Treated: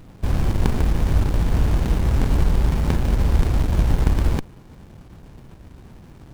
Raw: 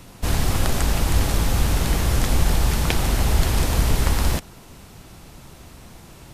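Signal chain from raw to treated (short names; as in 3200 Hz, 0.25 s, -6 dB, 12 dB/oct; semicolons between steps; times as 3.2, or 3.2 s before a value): running maximum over 65 samples; gain +2 dB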